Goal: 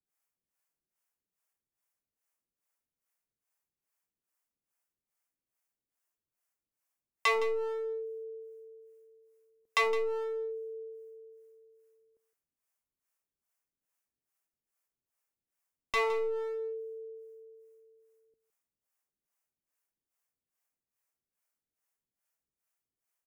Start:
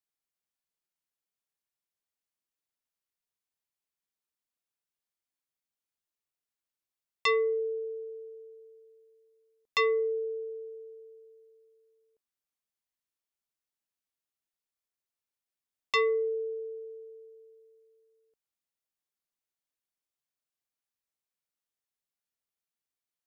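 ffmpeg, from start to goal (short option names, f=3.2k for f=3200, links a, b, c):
-filter_complex "[0:a]equalizer=f=3.8k:t=o:w=0.77:g=-11.5,asplit=2[a][b];[b]acompressor=threshold=-37dB:ratio=6,volume=-1dB[c];[a][c]amix=inputs=2:normalize=0,aeval=exprs='clip(val(0),-1,0.0316)':c=same,acrossover=split=470[d][e];[d]aeval=exprs='val(0)*(1-1/2+1/2*cos(2*PI*2.4*n/s))':c=same[f];[e]aeval=exprs='val(0)*(1-1/2-1/2*cos(2*PI*2.4*n/s))':c=same[g];[f][g]amix=inputs=2:normalize=0,aecho=1:1:163:0.2,volume=3dB"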